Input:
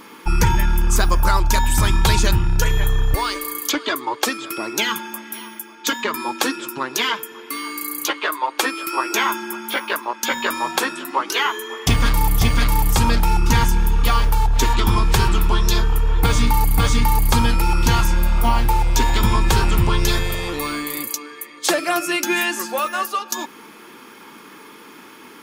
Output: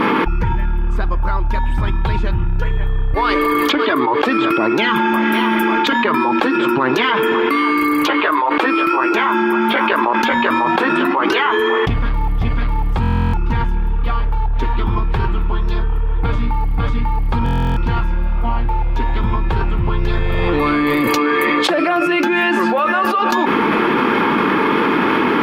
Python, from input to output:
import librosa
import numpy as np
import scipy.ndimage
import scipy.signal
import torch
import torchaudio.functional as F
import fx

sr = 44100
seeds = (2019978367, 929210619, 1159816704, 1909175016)

y = fx.air_absorb(x, sr, metres=480.0)
y = fx.buffer_glitch(y, sr, at_s=(13.01, 17.44), block=1024, repeats=13)
y = fx.env_flatten(y, sr, amount_pct=100)
y = y * 10.0 ** (-2.5 / 20.0)